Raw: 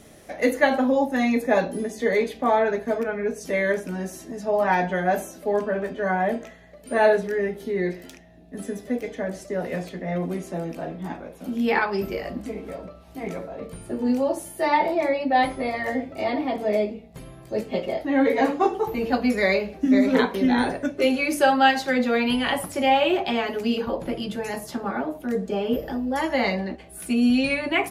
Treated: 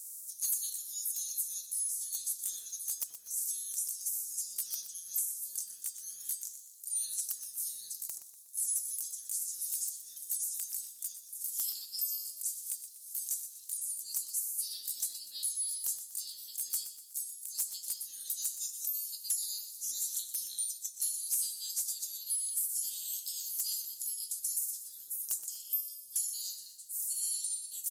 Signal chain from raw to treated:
ceiling on every frequency bin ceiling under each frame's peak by 29 dB
inverse Chebyshev high-pass filter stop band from 2,400 Hz, stop band 60 dB
comb filter 6.3 ms, depth 34%
speech leveller within 4 dB 0.5 s
sine wavefolder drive 7 dB, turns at −19 dBFS
repeating echo 122 ms, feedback 46%, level −12 dB
on a send at −16.5 dB: convolution reverb, pre-delay 76 ms
on the sum: level −5.5 dB

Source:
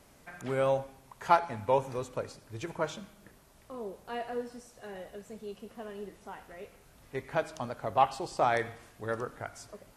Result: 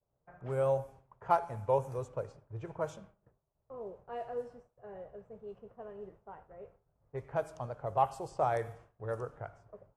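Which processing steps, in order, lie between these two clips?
low-pass that shuts in the quiet parts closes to 1,000 Hz, open at −28 dBFS
octave-band graphic EQ 125/250/500/2,000/4,000 Hz +7/−10/+4/−7/−11 dB
downward expander −48 dBFS
level −3.5 dB

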